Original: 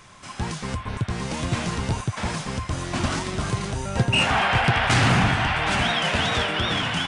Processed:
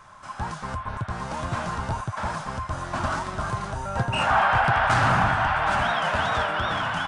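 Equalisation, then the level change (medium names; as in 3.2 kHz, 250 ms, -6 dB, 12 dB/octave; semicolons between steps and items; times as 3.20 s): bass shelf 120 Hz +7 dB; high-order bell 980 Hz +12 dB; band-stop 720 Hz, Q 17; -8.5 dB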